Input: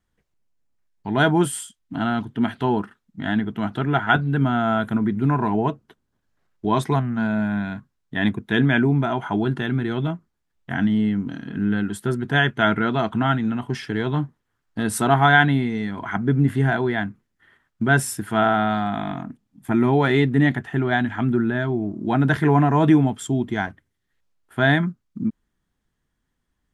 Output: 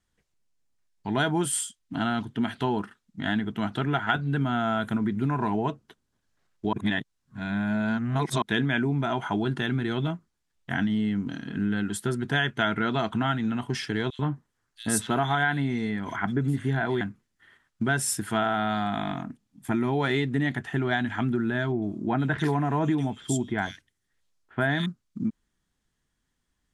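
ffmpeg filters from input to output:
-filter_complex "[0:a]asettb=1/sr,asplit=3[a][b][c];[a]atrim=end=14.104[d];[b]atrim=start=14.1:end=17.01,asetpts=PTS-STARTPTS,afade=t=in:d=0.004:c=qsin,afade=t=out:st=2.906:d=0.004:c=qsin,acrossover=split=3100[e][f];[e]adelay=90[g];[g][f]amix=inputs=2:normalize=0,atrim=end_sample=128331[h];[c]atrim=start=17.006[i];[d][h]acrossfade=d=0.004:c1=hsin:c2=qsin[j];[j][i]acrossfade=d=0.004:c1=qsin:c2=hsin,asettb=1/sr,asplit=3[k][l][m];[k]atrim=end=21.724[n];[l]atrim=start=21.72:end=24.86,asetpts=PTS-STARTPTS,afade=t=in:d=0.004:c=qsin,afade=t=out:st=3.136:d=0.004:c=qsin,acrossover=split=2800[o][p];[p]adelay=100[q];[o][q]amix=inputs=2:normalize=0,atrim=end_sample=138474[r];[m]atrim=start=24.856[s];[n][r]acrossfade=d=0.004:c1=hsin:c2=qsin[t];[t][s]acrossfade=d=0.004:c1=qsin:c2=hsin,asplit=3[u][v][w];[u]atrim=end=6.732[x];[v]atrim=start=6.728:end=8.422,asetpts=PTS-STARTPTS,areverse[y];[w]atrim=start=8.418[z];[x][y]acrossfade=d=0.004:c1=hsin:c2=hsin[aa];[aa][z]acrossfade=d=0.004:c1=hsin:c2=hsin,acompressor=threshold=-19dB:ratio=6,lowpass=10k,highshelf=f=3k:g=9,volume=-3dB"

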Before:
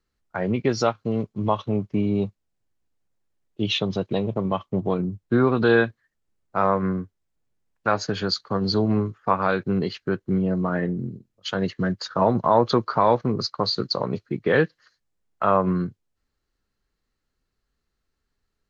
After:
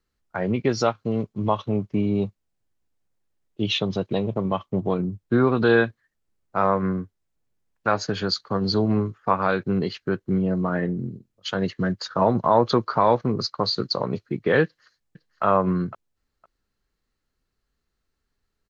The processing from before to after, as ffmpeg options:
-filter_complex "[0:a]asplit=2[a][b];[b]afade=t=in:st=14.64:d=0.01,afade=t=out:st=15.43:d=0.01,aecho=0:1:510|1020:0.298538|0.0447807[c];[a][c]amix=inputs=2:normalize=0"

